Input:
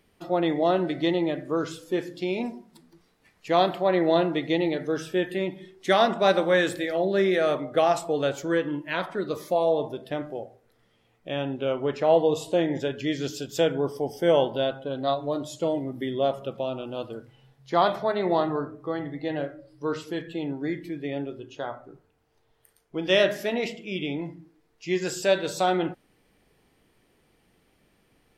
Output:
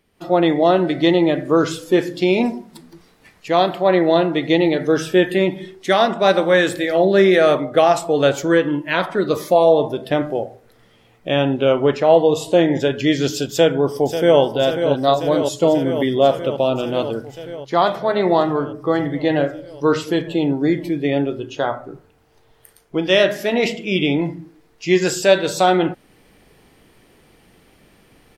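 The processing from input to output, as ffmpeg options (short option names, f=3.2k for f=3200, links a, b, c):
-filter_complex "[0:a]asplit=2[a][b];[b]afade=t=in:st=13.51:d=0.01,afade=t=out:st=14.4:d=0.01,aecho=0:1:540|1080|1620|2160|2700|3240|3780|4320|4860|5400|5940|6480:0.316228|0.237171|0.177878|0.133409|0.100056|0.0750423|0.0562817|0.0422113|0.0316585|0.0237439|0.0178079|0.0133559[c];[a][c]amix=inputs=2:normalize=0,asettb=1/sr,asplit=3[d][e][f];[d]atrim=end=20.164[g];[e]atrim=start=20.16:end=21.05,asetpts=PTS-STARTPTS,afade=t=in:d=0.004:c=qsin,afade=t=out:st=0.886:d=0.004:c=qsin,equalizer=f=1.7k:t=o:w=0.81:g=-6[h];[f]atrim=start=21.046[i];[g][h]acrossfade=d=0.004:c1=hsin:c2=qsin[j];[j][i]acrossfade=d=0.004:c1=qsin:c2=hsin,dynaudnorm=f=140:g=3:m=13.5dB,volume=-1dB"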